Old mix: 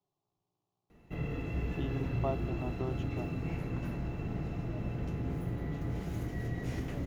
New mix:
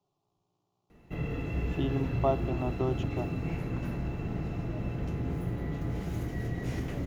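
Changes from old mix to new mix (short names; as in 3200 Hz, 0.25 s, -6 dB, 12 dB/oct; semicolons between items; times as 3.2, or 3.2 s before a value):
speech +5.5 dB; reverb: on, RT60 1.1 s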